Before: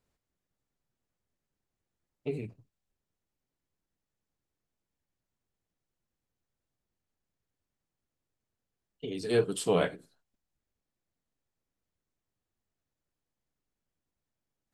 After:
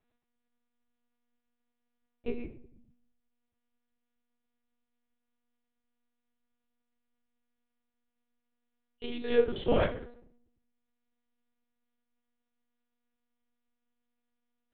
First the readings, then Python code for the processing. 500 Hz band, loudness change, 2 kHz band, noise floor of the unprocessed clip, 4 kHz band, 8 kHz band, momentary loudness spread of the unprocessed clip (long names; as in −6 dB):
+0.5 dB, 0.0 dB, −0.5 dB, below −85 dBFS, −1.5 dB, below −30 dB, 14 LU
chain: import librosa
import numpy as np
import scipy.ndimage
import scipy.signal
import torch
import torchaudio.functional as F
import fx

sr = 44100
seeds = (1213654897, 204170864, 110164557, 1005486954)

y = fx.room_shoebox(x, sr, seeds[0], volume_m3=130.0, walls='mixed', distance_m=0.34)
y = fx.lpc_monotone(y, sr, seeds[1], pitch_hz=240.0, order=8)